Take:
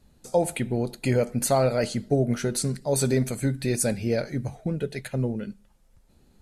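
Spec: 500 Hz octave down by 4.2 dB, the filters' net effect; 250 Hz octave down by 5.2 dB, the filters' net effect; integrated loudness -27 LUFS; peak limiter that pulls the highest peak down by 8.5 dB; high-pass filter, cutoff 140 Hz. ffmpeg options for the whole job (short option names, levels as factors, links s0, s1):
-af "highpass=140,equalizer=f=250:t=o:g=-4.5,equalizer=f=500:t=o:g=-4,volume=1.88,alimiter=limit=0.168:level=0:latency=1"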